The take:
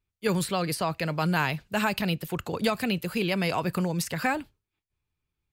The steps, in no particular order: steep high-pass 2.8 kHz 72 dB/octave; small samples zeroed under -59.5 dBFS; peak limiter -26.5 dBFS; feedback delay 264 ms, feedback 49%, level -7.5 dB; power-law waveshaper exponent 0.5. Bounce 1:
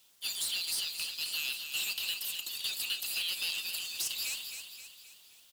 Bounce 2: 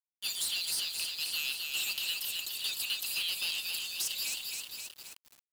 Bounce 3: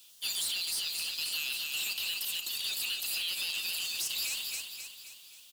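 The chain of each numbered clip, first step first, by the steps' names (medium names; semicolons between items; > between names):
steep high-pass > peak limiter > power-law waveshaper > feedback delay > small samples zeroed; steep high-pass > peak limiter > feedback delay > small samples zeroed > power-law waveshaper; steep high-pass > power-law waveshaper > small samples zeroed > feedback delay > peak limiter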